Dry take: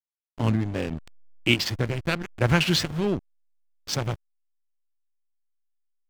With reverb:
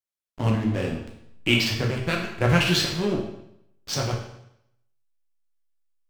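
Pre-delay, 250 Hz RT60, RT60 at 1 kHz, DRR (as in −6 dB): 9 ms, 0.75 s, 0.75 s, −0.5 dB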